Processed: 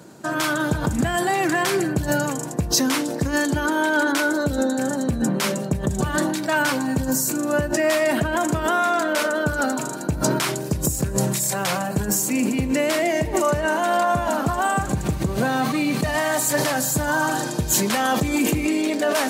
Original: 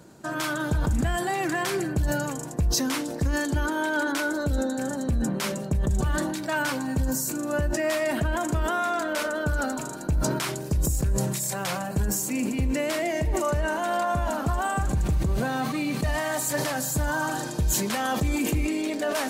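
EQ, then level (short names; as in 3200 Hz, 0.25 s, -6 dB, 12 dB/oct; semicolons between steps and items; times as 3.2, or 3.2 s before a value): HPF 120 Hz 12 dB/oct; +6.0 dB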